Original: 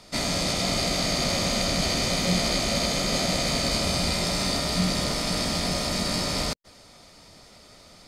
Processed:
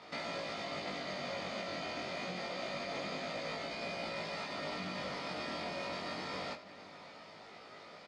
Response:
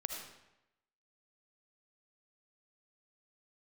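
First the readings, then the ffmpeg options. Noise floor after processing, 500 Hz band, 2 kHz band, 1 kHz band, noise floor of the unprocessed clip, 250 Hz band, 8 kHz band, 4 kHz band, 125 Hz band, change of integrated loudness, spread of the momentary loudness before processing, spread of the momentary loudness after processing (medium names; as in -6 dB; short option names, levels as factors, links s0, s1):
-54 dBFS, -11.0 dB, -10.5 dB, -10.0 dB, -51 dBFS, -17.0 dB, -27.0 dB, -18.0 dB, -21.0 dB, -15.5 dB, 2 LU, 13 LU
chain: -filter_complex "[0:a]lowshelf=f=330:g=-10.5,alimiter=limit=0.0631:level=0:latency=1:release=332,acompressor=threshold=0.0158:ratio=6,flanger=delay=17.5:depth=5.7:speed=0.26,highpass=140,lowpass=2500,asplit=2[s0][s1];[s1]adelay=20,volume=0.501[s2];[s0][s2]amix=inputs=2:normalize=0,asplit=2[s3][s4];[s4]adelay=641.4,volume=0.158,highshelf=f=4000:g=-14.4[s5];[s3][s5]amix=inputs=2:normalize=0,asplit=2[s6][s7];[1:a]atrim=start_sample=2205[s8];[s7][s8]afir=irnorm=-1:irlink=0,volume=0.531[s9];[s6][s9]amix=inputs=2:normalize=0,volume=1.26"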